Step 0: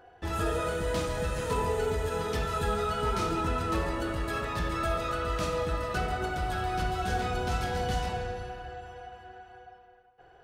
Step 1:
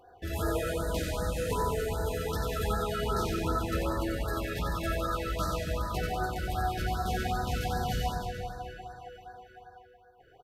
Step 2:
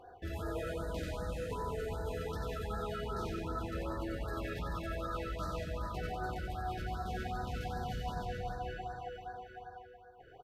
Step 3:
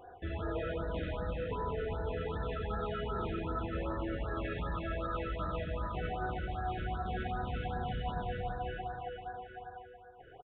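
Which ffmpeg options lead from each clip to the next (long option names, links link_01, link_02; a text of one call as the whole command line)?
ffmpeg -i in.wav -af "equalizer=frequency=12000:width=7.1:gain=15,aecho=1:1:90|193.5|312.5|449.4|606.8:0.631|0.398|0.251|0.158|0.1,afftfilt=real='re*(1-between(b*sr/1024,890*pow(2700/890,0.5+0.5*sin(2*PI*2.6*pts/sr))/1.41,890*pow(2700/890,0.5+0.5*sin(2*PI*2.6*pts/sr))*1.41))':imag='im*(1-between(b*sr/1024,890*pow(2700/890,0.5+0.5*sin(2*PI*2.6*pts/sr))/1.41,890*pow(2700/890,0.5+0.5*sin(2*PI*2.6*pts/sr))*1.41))':win_size=1024:overlap=0.75,volume=-2dB" out.wav
ffmpeg -i in.wav -af "highshelf=frequency=5400:gain=-10.5,areverse,acompressor=threshold=-38dB:ratio=6,areverse,volume=2.5dB" out.wav
ffmpeg -i in.wav -af "aresample=8000,aresample=44100,volume=2dB" out.wav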